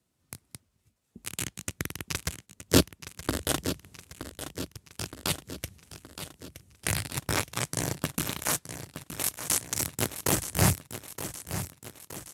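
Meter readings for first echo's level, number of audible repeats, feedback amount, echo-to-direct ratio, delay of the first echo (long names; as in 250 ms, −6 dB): −11.0 dB, 5, 57%, −9.5 dB, 920 ms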